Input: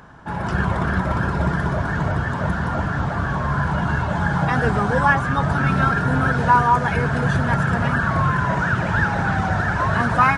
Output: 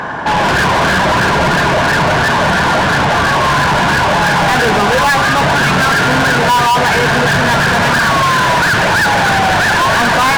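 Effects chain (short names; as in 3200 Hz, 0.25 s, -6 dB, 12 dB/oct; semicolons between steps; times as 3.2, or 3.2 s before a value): high shelf 3100 Hz -8.5 dB; notch 1300 Hz, Q 6; de-hum 90.92 Hz, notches 13; overdrive pedal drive 37 dB, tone 6100 Hz, clips at -5 dBFS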